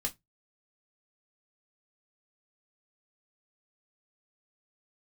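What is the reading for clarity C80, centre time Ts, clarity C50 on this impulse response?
34.5 dB, 8 ms, 22.5 dB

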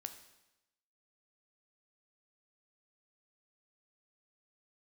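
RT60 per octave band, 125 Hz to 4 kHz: 0.95 s, 0.95 s, 0.95 s, 0.95 s, 0.95 s, 0.95 s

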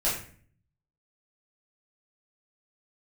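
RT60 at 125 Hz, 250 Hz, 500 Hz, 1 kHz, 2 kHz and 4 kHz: 1.0 s, 0.70 s, 0.50 s, 0.45 s, 0.50 s, 0.35 s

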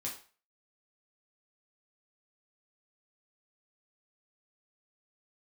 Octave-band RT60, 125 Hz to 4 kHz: 0.30 s, 0.30 s, 0.40 s, 0.40 s, 0.40 s, 0.35 s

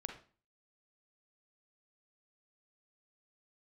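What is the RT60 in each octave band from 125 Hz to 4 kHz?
0.55 s, 0.50 s, 0.40 s, 0.40 s, 0.35 s, 0.35 s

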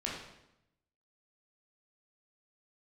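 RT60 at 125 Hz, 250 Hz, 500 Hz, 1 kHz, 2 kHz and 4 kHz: 1.1 s, 1.0 s, 0.85 s, 0.85 s, 0.75 s, 0.70 s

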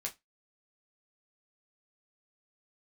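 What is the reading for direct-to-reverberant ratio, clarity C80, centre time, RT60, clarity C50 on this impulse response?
-1.0 dB, 29.0 dB, 11 ms, 0.15 s, 18.5 dB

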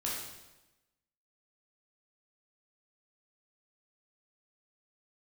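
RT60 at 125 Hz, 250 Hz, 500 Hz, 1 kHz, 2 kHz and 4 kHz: 1.1 s, 1.1 s, 1.1 s, 1.0 s, 0.95 s, 0.95 s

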